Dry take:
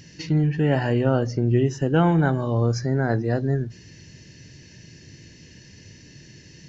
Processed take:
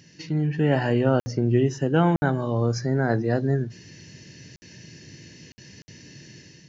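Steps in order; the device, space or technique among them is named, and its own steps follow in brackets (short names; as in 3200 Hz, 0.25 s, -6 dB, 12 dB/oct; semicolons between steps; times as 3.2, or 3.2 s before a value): call with lost packets (HPF 110 Hz 12 dB/oct; downsampling 16000 Hz; AGC gain up to 7 dB; packet loss packets of 60 ms); gain -5 dB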